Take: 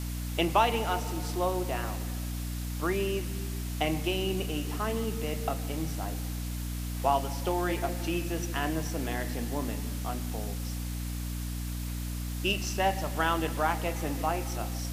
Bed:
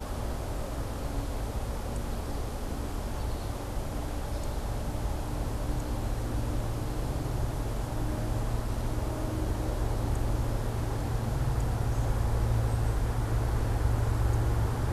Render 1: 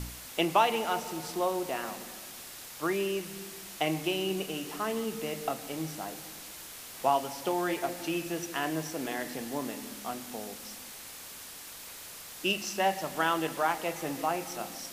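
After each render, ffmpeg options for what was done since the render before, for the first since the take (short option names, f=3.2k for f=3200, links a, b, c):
-af "bandreject=f=60:t=h:w=4,bandreject=f=120:t=h:w=4,bandreject=f=180:t=h:w=4,bandreject=f=240:t=h:w=4,bandreject=f=300:t=h:w=4"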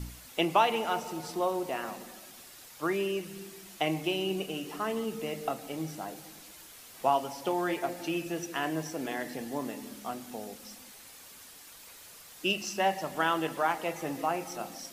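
-af "afftdn=nr=7:nf=-46"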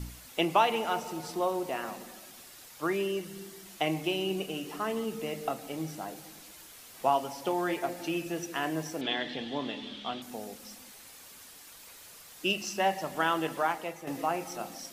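-filter_complex "[0:a]asettb=1/sr,asplit=3[a][b][c];[a]atrim=end=3.024[d];[b]atrim=start=3.02:end=3.66,asetpts=PTS-STARTPTS,afade=t=in:d=0.004:c=qsin,afade=t=out:st=0.636:d=0.004:c=qsin,bandreject=f=2.5k:w=9.7[e];[c]atrim=start=3.656[f];[d][e]acrossfade=d=0.004:c1=hsin:c2=qsin[g];[g][f]acrossfade=d=0.004:c1=qsin:c2=hsin,asettb=1/sr,asplit=3[h][i][j];[h]atrim=end=9.014[k];[i]atrim=start=9.01:end=10.22,asetpts=PTS-STARTPTS,afade=t=in:d=0.004:c=qsin,afade=t=out:st=1.206:d=0.004:c=qsin,lowpass=f=3.4k:t=q:w=8[l];[j]atrim=start=10.216[m];[k][l]acrossfade=d=0.004:c1=hsin:c2=qsin[n];[n][m]acrossfade=d=0.004:c1=qsin:c2=hsin,asplit=2[o][p];[o]atrim=end=14.07,asetpts=PTS-STARTPTS,afade=t=out:st=13.61:d=0.46:silence=0.354813[q];[p]atrim=start=14.07,asetpts=PTS-STARTPTS,afade=t=in:d=0.004:c=hsin:silence=0.354813[r];[q][r]concat=n=2:v=0:a=1"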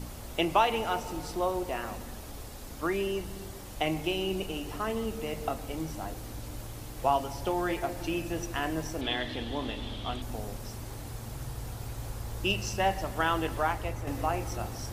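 -filter_complex "[1:a]volume=-10dB[a];[0:a][a]amix=inputs=2:normalize=0"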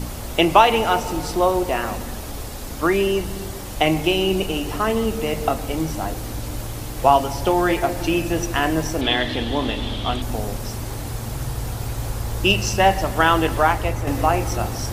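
-af "volume=11.5dB,alimiter=limit=-1dB:level=0:latency=1"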